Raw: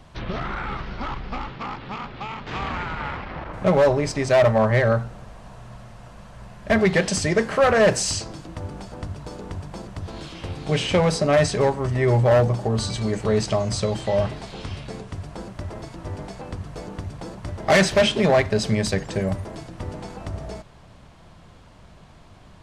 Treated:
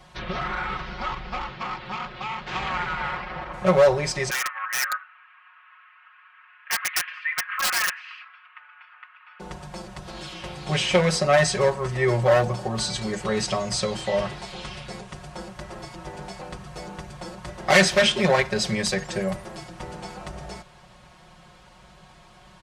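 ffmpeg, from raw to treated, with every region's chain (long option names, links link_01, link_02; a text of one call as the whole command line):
ffmpeg -i in.wav -filter_complex "[0:a]asettb=1/sr,asplit=3[link_01][link_02][link_03];[link_01]atrim=end=4.304[link_04];[link_02]atrim=start=4.3:end=9.4,asetpts=PTS-STARTPTS,afade=type=in:duration=0.004:curve=qsin,afade=type=out:start_time=5.096:duration=0.004:curve=qsin,asuperpass=centerf=1800:order=8:qfactor=1.1,aeval=exprs='(mod(9.44*val(0)+1,2)-1)/9.44':channel_layout=same[link_05];[link_03]atrim=start=9.396[link_06];[link_04][link_05]acrossfade=duration=0.004:curve1=hsin:curve2=qsin[link_07];[link_07][link_06]acrossfade=duration=0.004:curve1=qsin:curve2=hsin,highpass=frequency=76:poles=1,equalizer=frequency=240:width=0.6:gain=-8,aecho=1:1:5.5:0.97" out.wav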